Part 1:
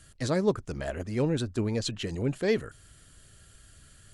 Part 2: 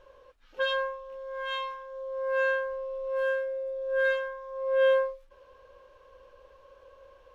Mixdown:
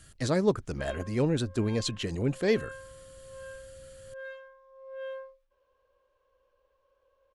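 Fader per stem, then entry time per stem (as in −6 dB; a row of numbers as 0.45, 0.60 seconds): +0.5, −16.5 decibels; 0.00, 0.20 seconds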